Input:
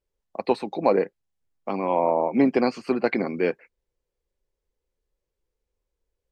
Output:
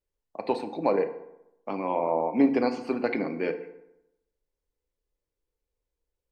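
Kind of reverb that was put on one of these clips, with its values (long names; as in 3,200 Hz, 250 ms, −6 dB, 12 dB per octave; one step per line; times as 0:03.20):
feedback delay network reverb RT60 0.86 s, low-frequency decay 1×, high-frequency decay 0.6×, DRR 7 dB
level −5 dB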